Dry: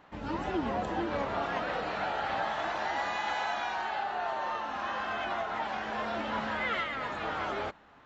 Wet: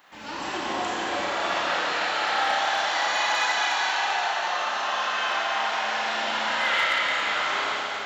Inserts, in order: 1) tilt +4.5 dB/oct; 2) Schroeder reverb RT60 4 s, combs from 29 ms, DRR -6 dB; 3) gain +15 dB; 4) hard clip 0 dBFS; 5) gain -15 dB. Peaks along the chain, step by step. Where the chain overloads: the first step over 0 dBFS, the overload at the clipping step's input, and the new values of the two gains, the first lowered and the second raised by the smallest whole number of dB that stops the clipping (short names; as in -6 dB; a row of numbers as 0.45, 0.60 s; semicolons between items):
-15.5, -11.5, +3.5, 0.0, -15.0 dBFS; step 3, 3.5 dB; step 3 +11 dB, step 5 -11 dB